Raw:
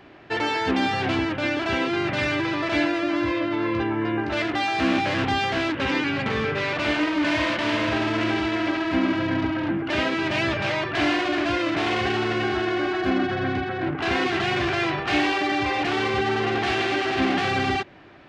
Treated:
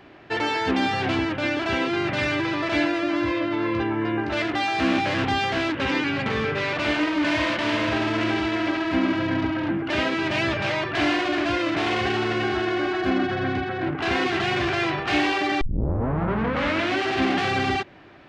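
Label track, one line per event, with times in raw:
15.610000	15.610000	tape start 1.39 s

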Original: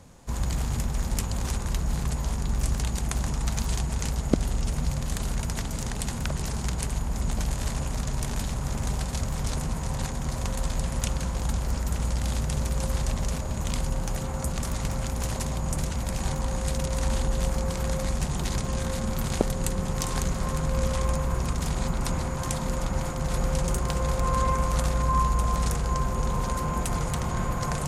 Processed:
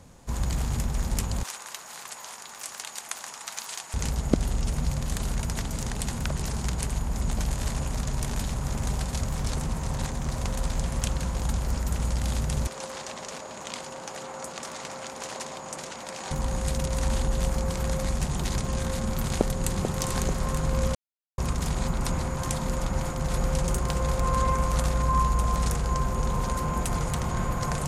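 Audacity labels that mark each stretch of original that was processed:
1.430000	3.940000	high-pass filter 930 Hz
9.380000	11.250000	highs frequency-modulated by the lows depth 0.32 ms
12.670000	16.310000	band-pass filter 410–7,600 Hz
19.240000	19.890000	delay throw 440 ms, feedback 55%, level −6.5 dB
20.950000	21.380000	silence

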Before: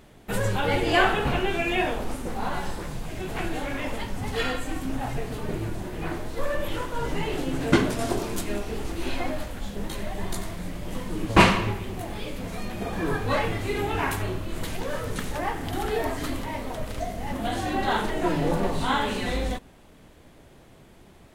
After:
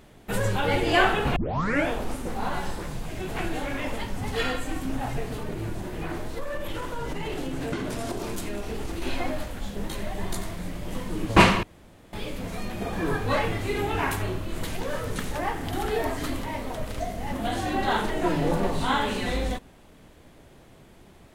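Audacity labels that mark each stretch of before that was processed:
1.360000	1.360000	tape start 0.53 s
5.310000	9.020000	downward compressor, threshold −26 dBFS
11.630000	12.130000	fill with room tone

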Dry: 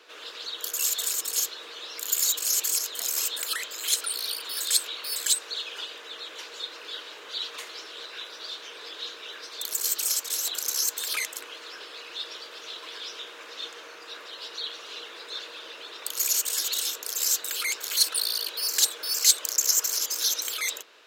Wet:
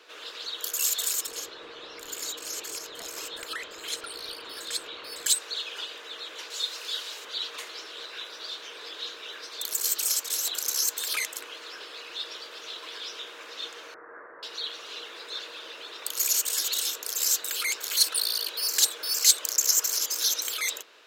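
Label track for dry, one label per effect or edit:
1.270000	5.260000	RIAA equalisation playback
6.500000	7.250000	bass and treble bass −13 dB, treble +12 dB
13.940000	14.430000	Butterworth low-pass 1,900 Hz 72 dB per octave

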